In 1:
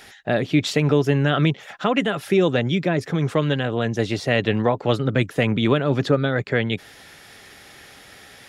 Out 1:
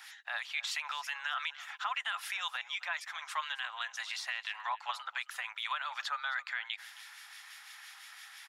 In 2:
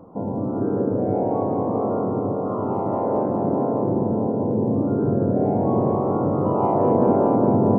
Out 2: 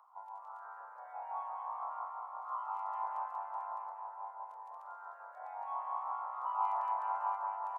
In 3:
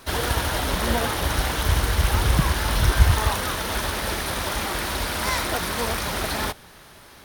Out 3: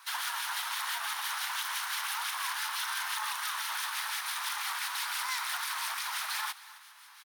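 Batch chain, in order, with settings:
Butterworth high-pass 890 Hz 48 dB per octave
brickwall limiter −19.5 dBFS
two-band tremolo in antiphase 5.9 Hz, depth 50%, crossover 1,600 Hz
single-tap delay 268 ms −18.5 dB
level −2.5 dB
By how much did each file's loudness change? −15.5, −18.5, −9.5 LU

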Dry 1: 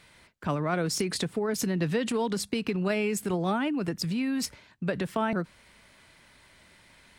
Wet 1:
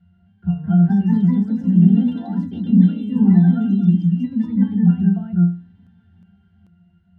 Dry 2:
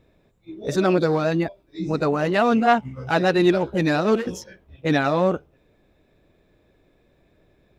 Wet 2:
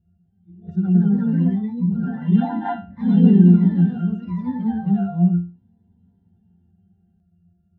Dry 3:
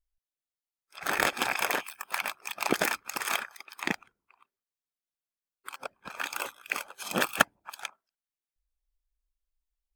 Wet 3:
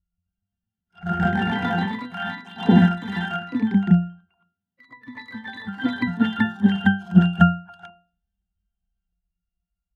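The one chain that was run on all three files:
low shelf with overshoot 260 Hz +9 dB, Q 3
resonances in every octave F, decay 0.36 s
delay with pitch and tempo change per echo 261 ms, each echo +2 semitones, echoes 3
normalise the peak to −1.5 dBFS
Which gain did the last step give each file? +9.5, +2.5, +21.0 decibels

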